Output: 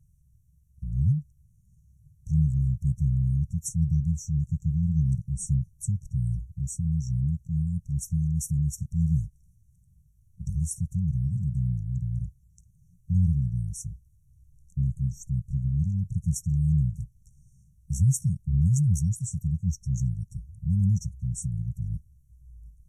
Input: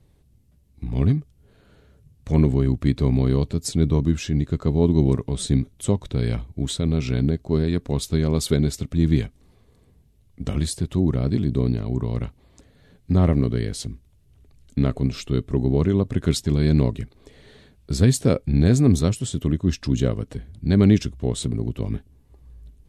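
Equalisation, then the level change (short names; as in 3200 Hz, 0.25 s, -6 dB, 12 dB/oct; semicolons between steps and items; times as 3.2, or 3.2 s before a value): brick-wall FIR band-stop 190–5500 Hz; -3.0 dB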